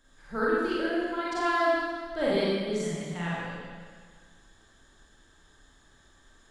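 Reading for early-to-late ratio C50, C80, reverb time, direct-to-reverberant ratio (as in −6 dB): −3.5 dB, −1.0 dB, 1.7 s, −8.0 dB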